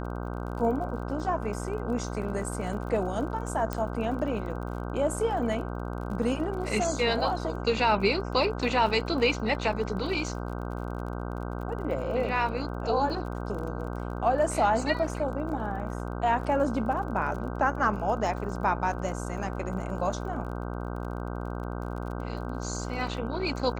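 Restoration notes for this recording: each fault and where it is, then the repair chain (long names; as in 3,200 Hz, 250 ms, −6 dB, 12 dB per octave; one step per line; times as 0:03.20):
mains buzz 60 Hz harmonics 26 −34 dBFS
surface crackle 33 per second −38 dBFS
0:03.73: click −16 dBFS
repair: click removal
hum removal 60 Hz, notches 26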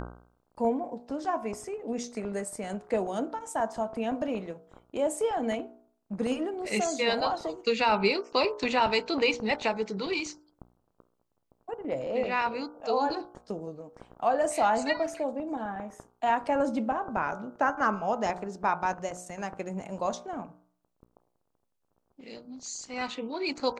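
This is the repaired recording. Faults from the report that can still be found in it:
0:03.73: click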